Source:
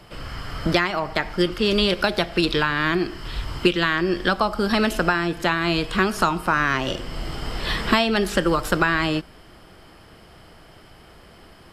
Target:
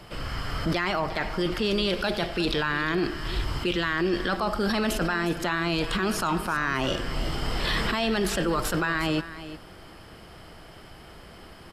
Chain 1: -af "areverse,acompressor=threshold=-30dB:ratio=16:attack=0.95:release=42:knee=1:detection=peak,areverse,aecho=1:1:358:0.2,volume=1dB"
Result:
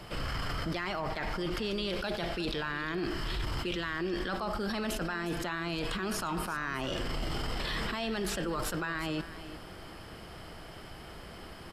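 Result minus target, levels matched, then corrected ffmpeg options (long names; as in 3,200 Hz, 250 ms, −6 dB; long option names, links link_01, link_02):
downward compressor: peak gain reduction +8.5 dB
-af "areverse,acompressor=threshold=-21dB:ratio=16:attack=0.95:release=42:knee=1:detection=peak,areverse,aecho=1:1:358:0.2,volume=1dB"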